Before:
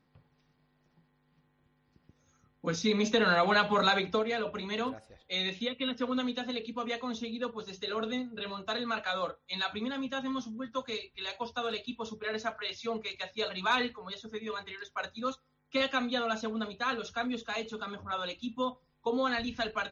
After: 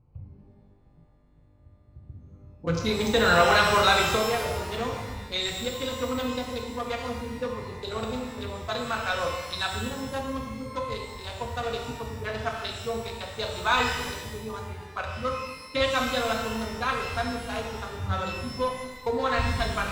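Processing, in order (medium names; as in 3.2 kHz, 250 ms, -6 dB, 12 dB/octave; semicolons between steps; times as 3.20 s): local Wiener filter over 25 samples; resonant low shelf 140 Hz +13 dB, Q 3; pitch-shifted reverb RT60 1.2 s, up +12 st, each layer -8 dB, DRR 0.5 dB; trim +4.5 dB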